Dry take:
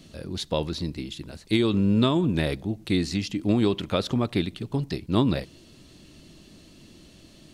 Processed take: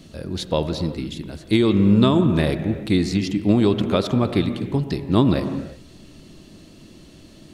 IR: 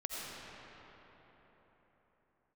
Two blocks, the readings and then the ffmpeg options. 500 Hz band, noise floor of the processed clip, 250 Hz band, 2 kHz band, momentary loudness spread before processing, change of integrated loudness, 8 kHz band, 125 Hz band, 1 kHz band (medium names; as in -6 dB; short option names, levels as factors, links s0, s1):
+5.5 dB, -46 dBFS, +6.0 dB, +3.0 dB, 12 LU, +5.5 dB, no reading, +5.5 dB, +5.0 dB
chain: -filter_complex "[0:a]asplit=2[s0][s1];[1:a]atrim=start_sample=2205,afade=t=out:st=0.42:d=0.01,atrim=end_sample=18963,lowpass=2100[s2];[s1][s2]afir=irnorm=-1:irlink=0,volume=0.531[s3];[s0][s3]amix=inputs=2:normalize=0,volume=1.33"